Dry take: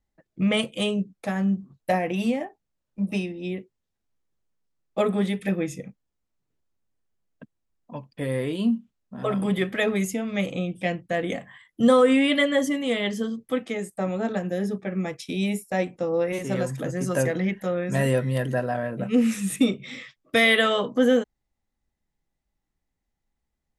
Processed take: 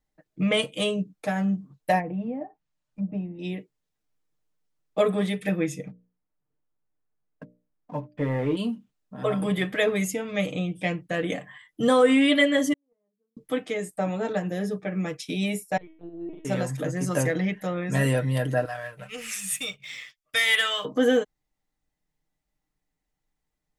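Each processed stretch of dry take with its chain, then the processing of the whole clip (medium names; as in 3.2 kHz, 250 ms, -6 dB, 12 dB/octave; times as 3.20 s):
1.99–3.39 s: low-pass 11 kHz + peaking EQ 400 Hz -8 dB 0.82 oct + low-pass that closes with the level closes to 630 Hz, closed at -27 dBFS
5.87–8.57 s: low-pass 1.8 kHz + waveshaping leveller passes 1 + hum notches 60/120/180/240/300/360/420/480/540/600 Hz
12.73–13.37 s: gate -17 dBFS, range -49 dB + low-pass 1.1 kHz 24 dB/octave
15.77–16.45 s: peaking EQ 460 Hz +8 dB 0.76 oct + inharmonic resonator 340 Hz, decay 0.63 s, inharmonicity 0.008 + LPC vocoder at 8 kHz pitch kept
18.65–20.85 s: amplifier tone stack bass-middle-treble 10-0-10 + band-stop 3.9 kHz + waveshaping leveller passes 1
whole clip: bass shelf 190 Hz -3.5 dB; comb 6.6 ms, depth 53%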